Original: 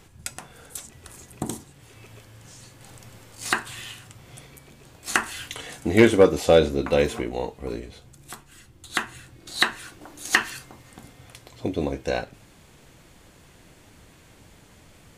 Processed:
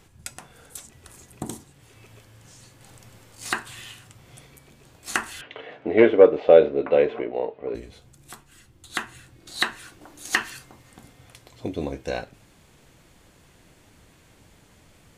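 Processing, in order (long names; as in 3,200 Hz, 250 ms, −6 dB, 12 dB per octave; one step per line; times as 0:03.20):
0:05.41–0:07.75: loudspeaker in its box 180–2,900 Hz, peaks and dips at 190 Hz −6 dB, 430 Hz +7 dB, 620 Hz +9 dB
level −3 dB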